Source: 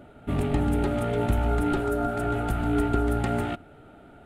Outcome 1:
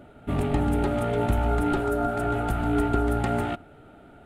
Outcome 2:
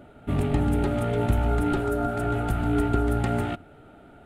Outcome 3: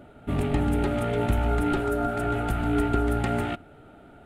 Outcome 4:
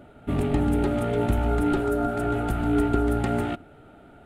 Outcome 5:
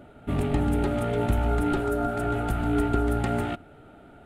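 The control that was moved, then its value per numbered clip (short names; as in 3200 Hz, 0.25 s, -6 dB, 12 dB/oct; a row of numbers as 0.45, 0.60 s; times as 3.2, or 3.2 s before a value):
dynamic EQ, frequency: 870, 110, 2300, 320, 7800 Hz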